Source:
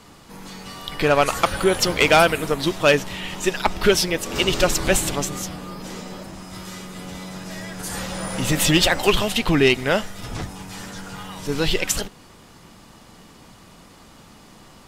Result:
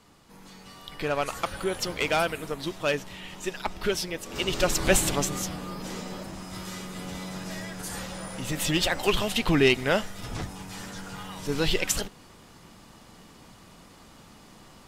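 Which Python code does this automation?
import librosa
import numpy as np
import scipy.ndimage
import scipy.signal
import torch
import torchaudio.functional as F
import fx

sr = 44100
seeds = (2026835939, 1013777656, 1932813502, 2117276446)

y = fx.gain(x, sr, db=fx.line((4.26, -10.5), (4.94, -2.0), (7.49, -2.0), (8.44, -10.5), (9.48, -4.0)))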